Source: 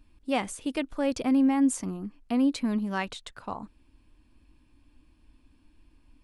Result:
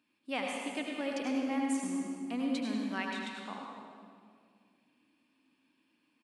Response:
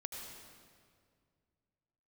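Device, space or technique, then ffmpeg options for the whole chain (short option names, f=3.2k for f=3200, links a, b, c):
PA in a hall: -filter_complex "[0:a]highpass=f=180:w=0.5412,highpass=f=180:w=1.3066,equalizer=f=2.4k:t=o:w=1.9:g=7.5,aecho=1:1:102:0.376[a];[1:a]atrim=start_sample=2205[b];[a][b]afir=irnorm=-1:irlink=0,volume=-7dB"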